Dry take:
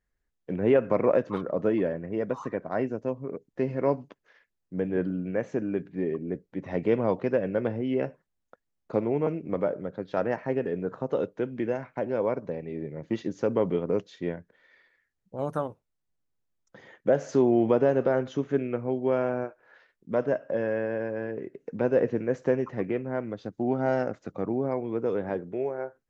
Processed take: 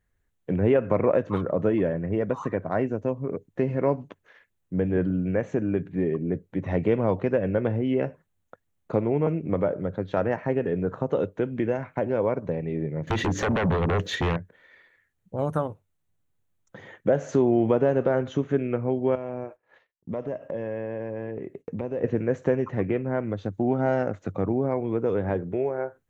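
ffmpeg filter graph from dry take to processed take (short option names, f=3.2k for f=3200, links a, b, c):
-filter_complex "[0:a]asettb=1/sr,asplit=3[a][b][c];[a]atrim=end=13.074[d];[b]atrim=start=13.07:end=14.37,asetpts=PTS-STARTPTS,afade=t=in:d=0.004:c=qsin,afade=t=out:st=1.296:d=0.004:c=qsin,equalizer=f=1.8k:t=o:w=0.35:g=7,acompressor=threshold=-36dB:ratio=3:attack=3.2:release=140:knee=1:detection=peak,aeval=exprs='0.0596*sin(PI/2*3.98*val(0)/0.0596)':c=same[e];[c]atrim=start=14.366[f];[d][e]acrossfade=d=0.004:c1=hsin:c2=qsin[g];[g][f]acrossfade=d=0.004:c1=qsin:c2=hsin,asettb=1/sr,asplit=3[h][i][j];[h]atrim=end=19.154[k];[i]atrim=start=19.15:end=22.04,asetpts=PTS-STARTPTS,afade=t=in:d=0.004:c=qsin,afade=t=out:st=2.886:d=0.004:c=qsin,agate=range=-33dB:threshold=-52dB:ratio=3:release=100:detection=peak,equalizer=f=1.5k:t=o:w=0.21:g=-12.5,acompressor=threshold=-37dB:ratio=2.5:attack=3.2:release=140:knee=1:detection=peak[l];[j]atrim=start=22.036[m];[k][l]acrossfade=d=0.004:c1=hsin:c2=qsin[n];[n][m]acrossfade=d=0.004:c1=qsin:c2=hsin,equalizer=f=100:t=o:w=0.33:g=8,equalizer=f=160:t=o:w=0.33:g=5,equalizer=f=5k:t=o:w=0.33:g=-10,acompressor=threshold=-31dB:ratio=1.5,equalizer=f=91:t=o:w=0.25:g=6,volume=5.5dB"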